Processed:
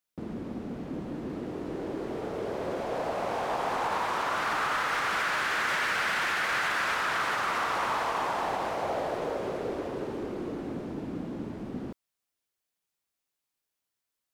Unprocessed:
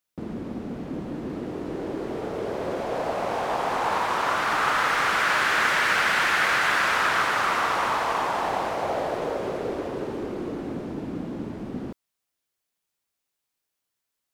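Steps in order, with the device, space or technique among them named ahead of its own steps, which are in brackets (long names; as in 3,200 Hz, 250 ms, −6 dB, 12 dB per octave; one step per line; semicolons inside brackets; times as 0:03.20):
soft clipper into limiter (soft clipping −13 dBFS, distortion −23 dB; brickwall limiter −17.5 dBFS, peak gain reduction 3.5 dB)
level −3.5 dB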